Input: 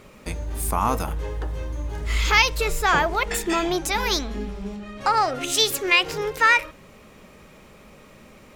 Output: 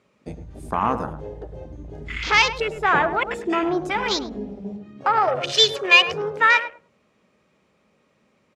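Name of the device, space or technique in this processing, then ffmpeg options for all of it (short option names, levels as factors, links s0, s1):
over-cleaned archive recording: -filter_complex "[0:a]asettb=1/sr,asplit=3[s0][s1][s2];[s0]atrim=end=5.274[s3];[s1]atrim=start=5.27:end=6.14,asetpts=PTS-STARTPTS,afade=t=in:d=0.004:c=qsin,afade=t=out:st=0.866:d=0.004:c=qsin,aecho=1:1:1.7:0.99,atrim=end_sample=38367[s4];[s2]atrim=start=6.136[s5];[s3][s4]acrossfade=d=0.004:c1=hsin:c2=qsin[s6];[s6][s5]acrossfade=d=0.004:c1=qsin:c2=hsin,highpass=110,lowpass=7200,afwtdn=0.0398,asplit=2[s7][s8];[s8]adelay=104,lowpass=f=1000:p=1,volume=0.398,asplit=2[s9][s10];[s10]adelay=104,lowpass=f=1000:p=1,volume=0.19,asplit=2[s11][s12];[s12]adelay=104,lowpass=f=1000:p=1,volume=0.19[s13];[s7][s9][s11][s13]amix=inputs=4:normalize=0,volume=1.12"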